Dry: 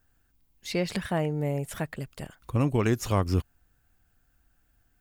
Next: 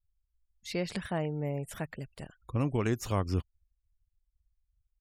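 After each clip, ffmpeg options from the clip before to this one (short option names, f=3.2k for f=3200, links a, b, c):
-af "afftfilt=real='re*gte(hypot(re,im),0.00355)':imag='im*gte(hypot(re,im),0.00355)':win_size=1024:overlap=0.75,volume=-5dB"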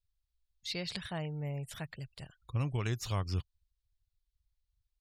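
-af "equalizer=f=125:t=o:w=1:g=6,equalizer=f=250:t=o:w=1:g=-7,equalizer=f=500:t=o:w=1:g=-3,equalizer=f=4k:t=o:w=1:g=11,volume=-5dB"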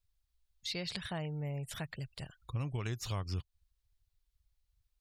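-af "acompressor=threshold=-42dB:ratio=2,volume=3.5dB"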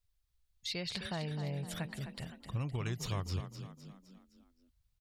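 -filter_complex "[0:a]asplit=6[a][b][c][d][e][f];[b]adelay=257,afreqshift=32,volume=-9.5dB[g];[c]adelay=514,afreqshift=64,volume=-15.9dB[h];[d]adelay=771,afreqshift=96,volume=-22.3dB[i];[e]adelay=1028,afreqshift=128,volume=-28.6dB[j];[f]adelay=1285,afreqshift=160,volume=-35dB[k];[a][g][h][i][j][k]amix=inputs=6:normalize=0"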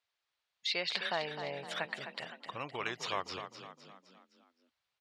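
-af "highpass=580,lowpass=3.6k,volume=9dB"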